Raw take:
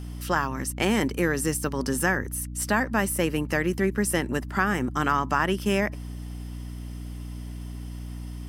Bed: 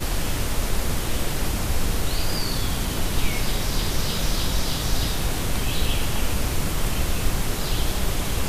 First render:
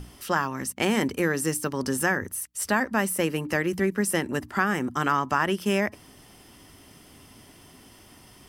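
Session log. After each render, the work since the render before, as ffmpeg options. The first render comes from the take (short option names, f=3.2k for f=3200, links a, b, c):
-af "bandreject=f=60:t=h:w=6,bandreject=f=120:t=h:w=6,bandreject=f=180:t=h:w=6,bandreject=f=240:t=h:w=6,bandreject=f=300:t=h:w=6"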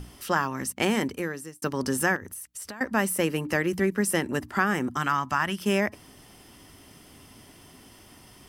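-filter_complex "[0:a]asettb=1/sr,asplit=3[a][b][c];[a]atrim=end=2.164[d];[b]atrim=start=2.16:end=2.81,asetpts=PTS-STARTPTS,afade=t=in:d=0.004:c=qsin,afade=t=out:st=0.646:d=0.004:c=qsin,acompressor=threshold=-34dB:ratio=20:attack=3.2:release=140:knee=1:detection=peak[e];[c]atrim=start=2.806[f];[d][e]acrossfade=d=0.004:c1=hsin:c2=qsin[g];[g][f]acrossfade=d=0.004:c1=qsin:c2=hsin,asettb=1/sr,asplit=3[h][i][j];[h]atrim=end=4.974[k];[i]atrim=start=4.97:end=5.61,asetpts=PTS-STARTPTS,afade=t=in:d=0.004:c=qsin,afade=t=out:st=0.636:d=0.004:c=qsin,equalizer=f=430:t=o:w=1.1:g=-11.5[l];[j]atrim=start=5.606[m];[k][l]acrossfade=d=0.004:c1=hsin:c2=qsin[n];[n][m]acrossfade=d=0.004:c1=qsin:c2=hsin,asplit=2[o][p];[o]atrim=end=1.62,asetpts=PTS-STARTPTS,afade=t=out:st=0.84:d=0.78[q];[p]atrim=start=1.62,asetpts=PTS-STARTPTS,afade=t=in:d=0.004:c=hsin[r];[q][r]concat=n=2:v=0:a=1"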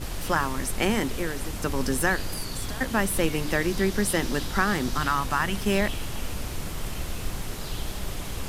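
-filter_complex "[1:a]volume=-8.5dB[a];[0:a][a]amix=inputs=2:normalize=0"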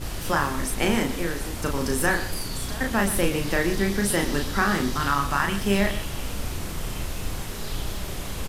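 -filter_complex "[0:a]asplit=2[a][b];[b]adelay=35,volume=-4dB[c];[a][c]amix=inputs=2:normalize=0,asplit=2[d][e];[e]adelay=122.4,volume=-13dB,highshelf=f=4k:g=-2.76[f];[d][f]amix=inputs=2:normalize=0"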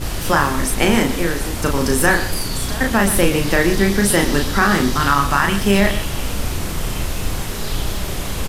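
-af "volume=8dB,alimiter=limit=-2dB:level=0:latency=1"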